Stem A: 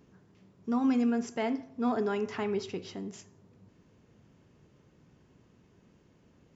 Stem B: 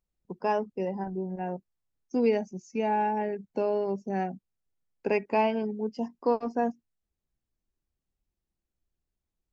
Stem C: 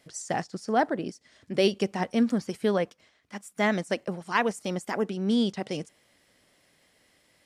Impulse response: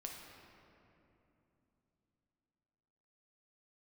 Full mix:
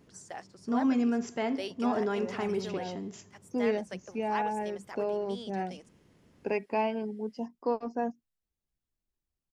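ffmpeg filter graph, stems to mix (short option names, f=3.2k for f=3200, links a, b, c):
-filter_complex "[0:a]volume=0dB[a];[1:a]dynaudnorm=f=440:g=5:m=8.5dB,adelay=1400,volume=-12.5dB[b];[2:a]highpass=440,volume=-12dB[c];[a][b][c]amix=inputs=3:normalize=0"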